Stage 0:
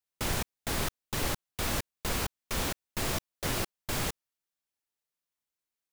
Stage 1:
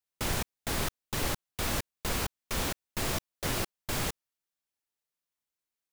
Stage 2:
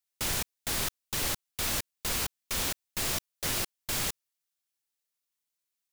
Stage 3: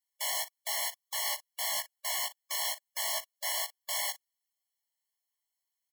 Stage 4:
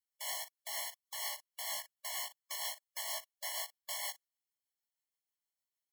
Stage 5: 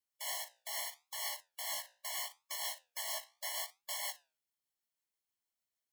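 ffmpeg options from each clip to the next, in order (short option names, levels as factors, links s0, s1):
-af anull
-af "highshelf=f=2000:g=9.5,volume=0.596"
-filter_complex "[0:a]asplit=2[s0][s1];[s1]aecho=0:1:17|56:0.708|0.178[s2];[s0][s2]amix=inputs=2:normalize=0,afftfilt=real='re*eq(mod(floor(b*sr/1024/570),2),1)':imag='im*eq(mod(floor(b*sr/1024/570),2),1)':win_size=1024:overlap=0.75"
-af "tremolo=f=6.4:d=0.33,volume=0.531"
-af "flanger=delay=9.2:depth=8.8:regen=-74:speed=0.77:shape=triangular,volume=1.68"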